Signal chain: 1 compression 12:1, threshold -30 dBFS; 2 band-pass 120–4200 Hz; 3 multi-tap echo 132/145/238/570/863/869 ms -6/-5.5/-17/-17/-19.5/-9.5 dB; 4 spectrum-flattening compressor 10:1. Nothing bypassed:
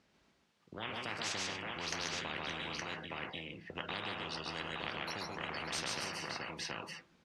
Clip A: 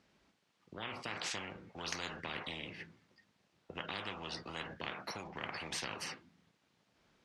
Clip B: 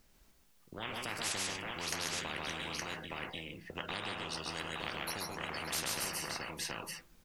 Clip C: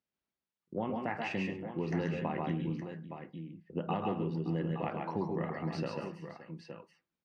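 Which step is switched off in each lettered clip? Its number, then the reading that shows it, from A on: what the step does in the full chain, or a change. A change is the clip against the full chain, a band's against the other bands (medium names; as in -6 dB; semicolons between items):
3, momentary loudness spread change +1 LU; 2, 8 kHz band +5.0 dB; 4, 4 kHz band -21.0 dB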